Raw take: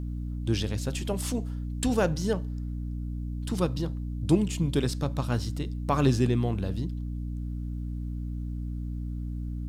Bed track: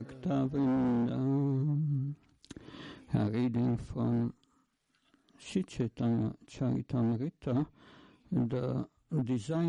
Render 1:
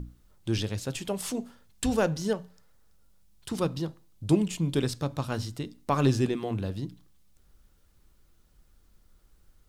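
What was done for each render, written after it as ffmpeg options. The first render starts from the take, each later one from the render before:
-af "bandreject=f=60:t=h:w=6,bandreject=f=120:t=h:w=6,bandreject=f=180:t=h:w=6,bandreject=f=240:t=h:w=6,bandreject=f=300:t=h:w=6"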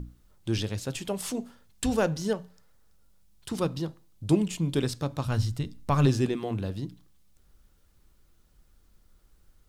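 -filter_complex "[0:a]asplit=3[s0][s1][s2];[s0]afade=t=out:st=5.24:d=0.02[s3];[s1]asubboost=boost=4.5:cutoff=140,afade=t=in:st=5.24:d=0.02,afade=t=out:st=6.05:d=0.02[s4];[s2]afade=t=in:st=6.05:d=0.02[s5];[s3][s4][s5]amix=inputs=3:normalize=0"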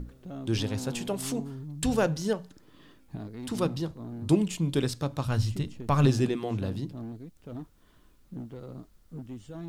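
-filter_complex "[1:a]volume=0.355[s0];[0:a][s0]amix=inputs=2:normalize=0"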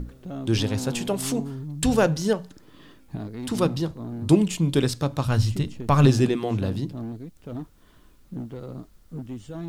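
-af "volume=1.88"

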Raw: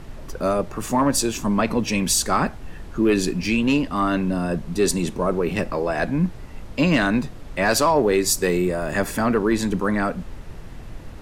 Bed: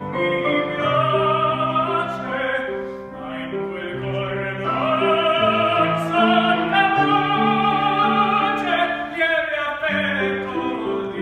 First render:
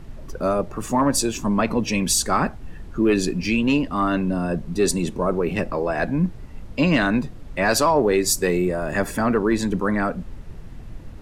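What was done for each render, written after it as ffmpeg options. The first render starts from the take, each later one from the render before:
-af "afftdn=nr=6:nf=-37"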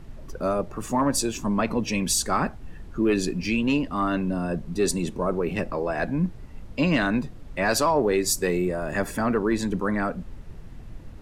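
-af "volume=0.668"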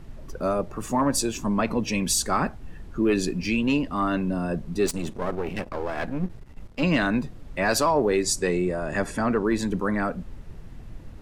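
-filter_complex "[0:a]asettb=1/sr,asplit=3[s0][s1][s2];[s0]atrim=end=4.864[s3];[s1]atrim=start=4.86:end=6.83,asetpts=PTS-STARTPTS,afade=t=in:d=0.004:c=qsin,afade=t=out:st=1.966:d=0.004:c=qsin,aeval=exprs='if(lt(val(0),0),0.251*val(0),val(0))':c=same[s4];[s2]atrim=start=6.826[s5];[s3][s4]acrossfade=d=0.004:c1=hsin:c2=qsin[s6];[s6][s5]acrossfade=d=0.004:c1=qsin:c2=hsin,asettb=1/sr,asplit=3[s7][s8][s9];[s7]atrim=end=8.234[s10];[s8]atrim=start=8.23:end=9.44,asetpts=PTS-STARTPTS,afade=t=in:d=0.004:c=qsin,afade=t=out:st=1.206:d=0.004:c=qsin,lowpass=f=9800:w=0.5412,lowpass=f=9800:w=1.3066[s11];[s9]atrim=start=9.436[s12];[s10][s11]acrossfade=d=0.004:c1=hsin:c2=qsin[s13];[s13][s12]acrossfade=d=0.004:c1=qsin:c2=hsin"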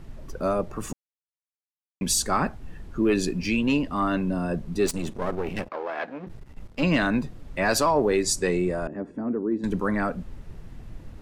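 -filter_complex "[0:a]asettb=1/sr,asplit=3[s0][s1][s2];[s0]atrim=end=5.684[s3];[s1]atrim=start=5.68:end=6.27,asetpts=PTS-STARTPTS,afade=t=in:d=0.004:c=qsin,afade=t=out:st=0.586:d=0.004:c=qsin,highpass=410,lowpass=3600[s4];[s2]atrim=start=6.266[s5];[s3][s4]acrossfade=d=0.004:c1=hsin:c2=qsin[s6];[s6][s5]acrossfade=d=0.004:c1=qsin:c2=hsin,asettb=1/sr,asplit=3[s7][s8][s9];[s7]atrim=end=8.874[s10];[s8]atrim=start=8.87:end=9.64,asetpts=PTS-STARTPTS,afade=t=in:d=0.004:c=qsin,afade=t=out:st=0.766:d=0.004:c=qsin,bandpass=f=290:t=q:w=1.8[s11];[s9]atrim=start=9.636[s12];[s10][s11]acrossfade=d=0.004:c1=hsin:c2=qsin[s13];[s13][s12]acrossfade=d=0.004:c1=qsin:c2=hsin,asplit=3[s14][s15][s16];[s14]atrim=end=0.93,asetpts=PTS-STARTPTS,afade=t=out:st=0.926:d=0.004:c=hsin[s17];[s15]atrim=start=0.93:end=2.01,asetpts=PTS-STARTPTS,volume=0[s18];[s16]atrim=start=2.01,asetpts=PTS-STARTPTS,afade=t=in:d=0.004:c=hsin[s19];[s17][s18][s19]concat=n=3:v=0:a=1"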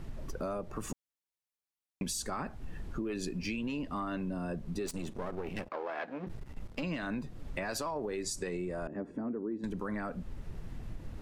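-af "alimiter=limit=0.141:level=0:latency=1:release=58,acompressor=threshold=0.0178:ratio=4"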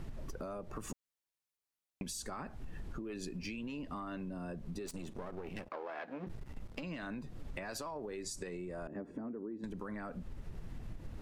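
-af "acompressor=threshold=0.0112:ratio=6"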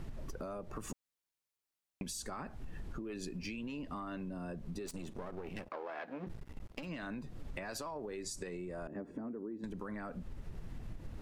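-filter_complex "[0:a]asettb=1/sr,asplit=3[s0][s1][s2];[s0]atrim=end=6.334[s3];[s1]atrim=start=6.33:end=6.89,asetpts=PTS-STARTPTS,afade=t=in:d=0.004:c=qsin,afade=t=out:st=0.556:d=0.004:c=qsin,aeval=exprs='sgn(val(0))*max(abs(val(0))-0.002,0)':c=same[s4];[s2]atrim=start=6.886[s5];[s3][s4]acrossfade=d=0.004:c1=hsin:c2=qsin[s6];[s6][s5]acrossfade=d=0.004:c1=qsin:c2=hsin"

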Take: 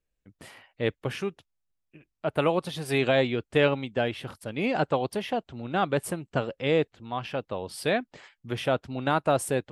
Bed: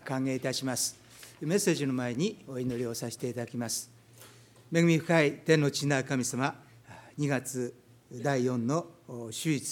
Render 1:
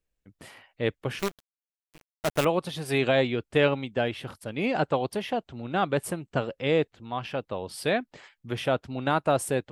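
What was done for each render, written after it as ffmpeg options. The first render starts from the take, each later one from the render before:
-filter_complex "[0:a]asettb=1/sr,asplit=3[s0][s1][s2];[s0]atrim=end=1.194[s3];[s1]atrim=start=1.19:end=2.45,asetpts=PTS-STARTPTS,afade=t=in:d=0.004:c=qsin,afade=t=out:st=1.256:d=0.004:c=qsin,acrusher=bits=5:dc=4:mix=0:aa=0.000001[s4];[s2]atrim=start=2.446[s5];[s3][s4]acrossfade=d=0.004:c1=hsin:c2=qsin[s6];[s6][s5]acrossfade=d=0.004:c1=qsin:c2=hsin"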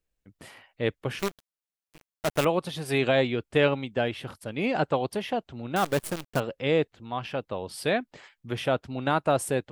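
-filter_complex "[0:a]asettb=1/sr,asplit=3[s0][s1][s2];[s0]atrim=end=5.764[s3];[s1]atrim=start=5.76:end=6.4,asetpts=PTS-STARTPTS,afade=t=in:d=0.004:c=qsin,afade=t=out:st=0.636:d=0.004:c=qsin,acrusher=bits=6:dc=4:mix=0:aa=0.000001[s4];[s2]atrim=start=6.396[s5];[s3][s4]acrossfade=d=0.004:c1=hsin:c2=qsin[s6];[s6][s5]acrossfade=d=0.004:c1=qsin:c2=hsin"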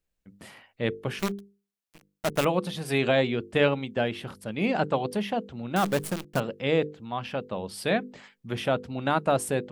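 -af "equalizer=f=200:w=5.4:g=9.5,bandreject=f=50:t=h:w=6,bandreject=f=100:t=h:w=6,bandreject=f=150:t=h:w=6,bandreject=f=200:t=h:w=6,bandreject=f=250:t=h:w=6,bandreject=f=300:t=h:w=6,bandreject=f=350:t=h:w=6,bandreject=f=400:t=h:w=6,bandreject=f=450:t=h:w=6,bandreject=f=500:t=h:w=6"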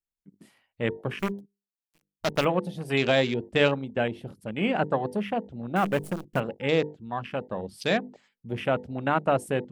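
-af "afwtdn=0.0141,highshelf=f=3600:g=7.5"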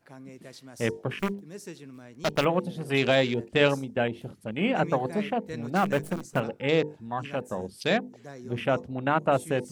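-filter_complex "[1:a]volume=0.178[s0];[0:a][s0]amix=inputs=2:normalize=0"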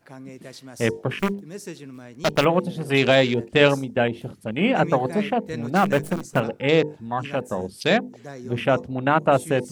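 -af "volume=1.88"

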